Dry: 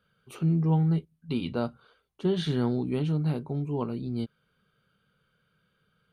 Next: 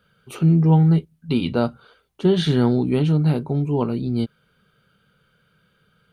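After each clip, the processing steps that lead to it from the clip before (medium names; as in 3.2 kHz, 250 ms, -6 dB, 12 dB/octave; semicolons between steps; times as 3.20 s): band-stop 1.1 kHz, Q 18; trim +9 dB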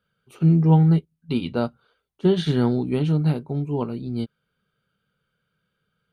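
upward expansion 1.5:1, over -37 dBFS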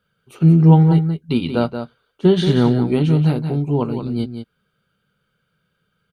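delay 179 ms -8.5 dB; trim +5 dB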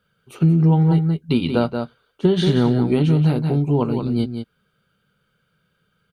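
compression 4:1, threshold -15 dBFS, peak gain reduction 8.5 dB; trim +2 dB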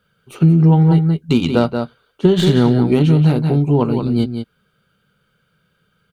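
tracing distortion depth 0.043 ms; trim +4 dB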